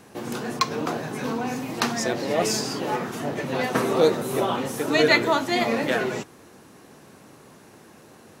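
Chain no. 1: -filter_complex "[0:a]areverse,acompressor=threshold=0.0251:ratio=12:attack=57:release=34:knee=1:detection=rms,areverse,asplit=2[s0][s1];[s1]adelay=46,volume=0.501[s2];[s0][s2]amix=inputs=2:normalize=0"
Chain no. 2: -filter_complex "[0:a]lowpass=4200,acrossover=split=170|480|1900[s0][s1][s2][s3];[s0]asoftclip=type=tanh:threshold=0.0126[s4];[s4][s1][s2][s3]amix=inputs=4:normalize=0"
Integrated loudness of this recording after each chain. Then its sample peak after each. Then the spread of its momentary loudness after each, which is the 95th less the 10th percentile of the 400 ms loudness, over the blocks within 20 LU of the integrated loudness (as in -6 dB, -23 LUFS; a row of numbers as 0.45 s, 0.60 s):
-29.5 LUFS, -24.5 LUFS; -15.0 dBFS, -6.5 dBFS; 20 LU, 10 LU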